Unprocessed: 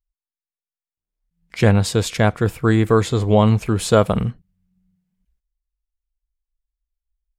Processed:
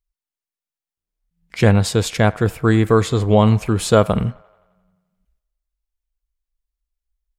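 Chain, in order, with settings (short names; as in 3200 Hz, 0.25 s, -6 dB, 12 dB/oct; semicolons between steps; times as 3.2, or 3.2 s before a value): band-limited delay 87 ms, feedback 63%, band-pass 1200 Hz, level -21 dB; gain +1 dB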